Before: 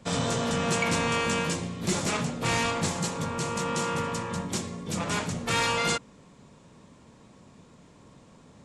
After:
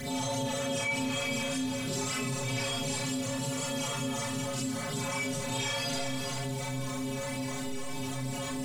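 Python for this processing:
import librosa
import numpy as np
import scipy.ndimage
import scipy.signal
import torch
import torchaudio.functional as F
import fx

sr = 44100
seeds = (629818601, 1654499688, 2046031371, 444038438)

p1 = fx.delta_mod(x, sr, bps=64000, step_db=-32.5)
p2 = fx.spec_repair(p1, sr, seeds[0], start_s=4.55, length_s=0.59, low_hz=560.0, high_hz=2200.0, source='both')
p3 = fx.stiff_resonator(p2, sr, f0_hz=130.0, decay_s=0.51, stiffness=0.008)
p4 = fx.quant_dither(p3, sr, seeds[1], bits=12, dither='none')
p5 = fx.phaser_stages(p4, sr, stages=12, low_hz=260.0, high_hz=2200.0, hz=3.3, feedback_pct=40)
p6 = p5 + fx.echo_single(p5, sr, ms=396, db=-9.0, dry=0)
p7 = fx.rev_schroeder(p6, sr, rt60_s=0.4, comb_ms=27, drr_db=-6.5)
p8 = fx.env_flatten(p7, sr, amount_pct=70)
y = p8 * 10.0 ** (-2.5 / 20.0)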